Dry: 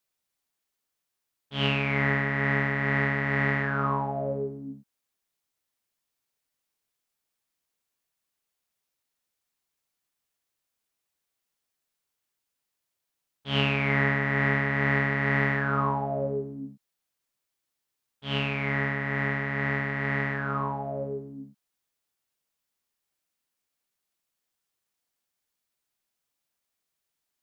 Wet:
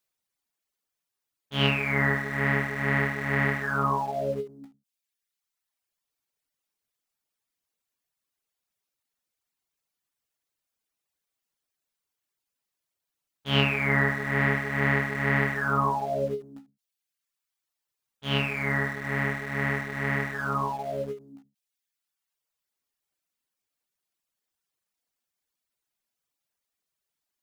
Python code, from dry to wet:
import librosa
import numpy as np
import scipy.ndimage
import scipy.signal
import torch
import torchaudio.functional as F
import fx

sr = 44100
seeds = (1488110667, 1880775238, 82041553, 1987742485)

p1 = fx.dereverb_blind(x, sr, rt60_s=1.1)
p2 = np.where(np.abs(p1) >= 10.0 ** (-38.0 / 20.0), p1, 0.0)
p3 = p1 + (p2 * 10.0 ** (-6.5 / 20.0))
y = fx.end_taper(p3, sr, db_per_s=210.0)